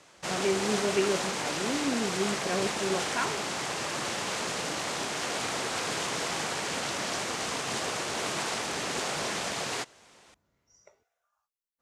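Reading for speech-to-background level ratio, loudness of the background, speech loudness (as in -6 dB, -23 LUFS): -1.0 dB, -31.0 LUFS, -32.0 LUFS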